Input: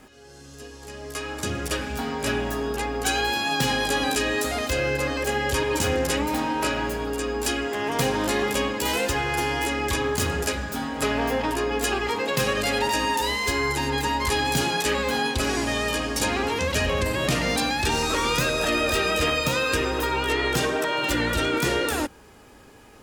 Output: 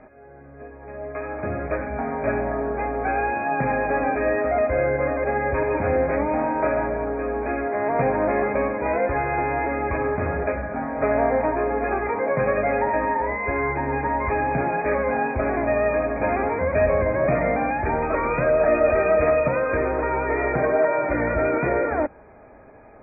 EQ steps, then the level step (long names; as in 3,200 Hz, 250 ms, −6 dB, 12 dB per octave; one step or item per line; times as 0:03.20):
linear-phase brick-wall low-pass 2,500 Hz
high-frequency loss of the air 120 metres
parametric band 640 Hz +13.5 dB 0.44 octaves
0.0 dB